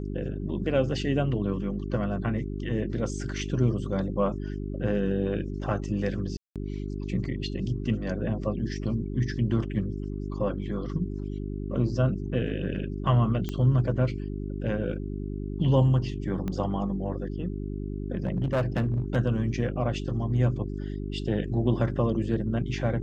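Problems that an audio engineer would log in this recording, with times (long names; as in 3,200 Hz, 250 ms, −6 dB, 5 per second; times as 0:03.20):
mains hum 50 Hz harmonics 8 −33 dBFS
0:06.37–0:06.56: drop-out 187 ms
0:13.49: click −18 dBFS
0:16.48: click −20 dBFS
0:18.24–0:19.17: clipping −21.5 dBFS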